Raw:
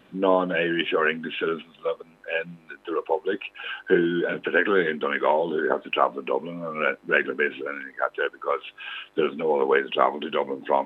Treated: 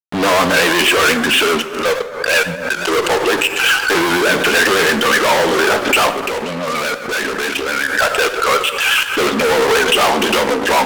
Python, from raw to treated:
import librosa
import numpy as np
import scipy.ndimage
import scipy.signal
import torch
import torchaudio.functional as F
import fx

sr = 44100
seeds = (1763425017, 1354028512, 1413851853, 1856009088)

y = fx.fuzz(x, sr, gain_db=37.0, gate_db=-42.0)
y = fx.level_steps(y, sr, step_db=21, at=(6.14, 7.97))
y = fx.low_shelf(y, sr, hz=490.0, db=-9.0)
y = fx.rev_plate(y, sr, seeds[0], rt60_s=1.3, hf_ratio=0.55, predelay_ms=0, drr_db=8.0)
y = fx.vibrato(y, sr, rate_hz=8.2, depth_cents=74.0)
y = fx.pre_swell(y, sr, db_per_s=81.0)
y = y * librosa.db_to_amplitude(4.0)